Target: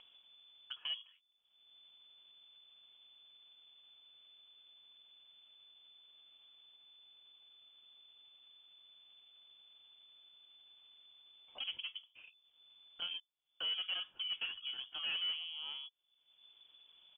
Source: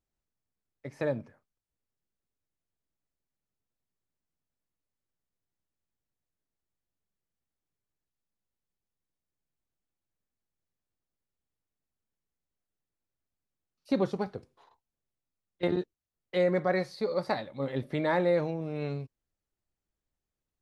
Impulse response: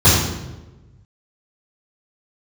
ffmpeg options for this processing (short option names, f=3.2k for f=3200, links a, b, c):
-filter_complex "[0:a]atempo=1.2,aresample=11025,asoftclip=type=tanh:threshold=-26.5dB,aresample=44100,equalizer=f=1.6k:t=o:w=0.63:g=-12,acrossover=split=430[a][b];[a]acompressor=threshold=-48dB:ratio=6[c];[c][b]amix=inputs=2:normalize=0,lowpass=f=3k:t=q:w=0.5098,lowpass=f=3k:t=q:w=0.6013,lowpass=f=3k:t=q:w=0.9,lowpass=f=3k:t=q:w=2.563,afreqshift=-3500,acompressor=mode=upward:threshold=-36dB:ratio=2.5,volume=-4dB"